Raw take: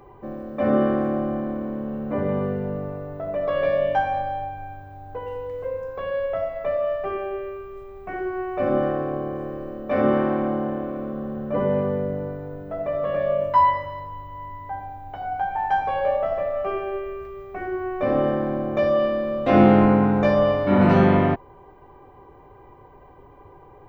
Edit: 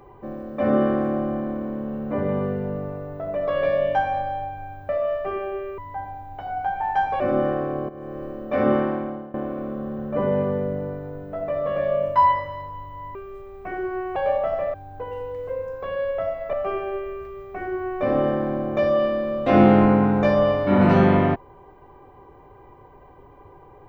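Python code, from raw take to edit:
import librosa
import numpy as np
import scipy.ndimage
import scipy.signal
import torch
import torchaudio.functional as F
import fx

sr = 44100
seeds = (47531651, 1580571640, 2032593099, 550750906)

y = fx.edit(x, sr, fx.move(start_s=4.89, length_s=1.79, to_s=16.53),
    fx.swap(start_s=7.57, length_s=1.01, other_s=14.53, other_length_s=1.42),
    fx.fade_in_from(start_s=9.27, length_s=0.33, floor_db=-13.5),
    fx.fade_out_to(start_s=10.11, length_s=0.61, floor_db=-18.0), tone=tone)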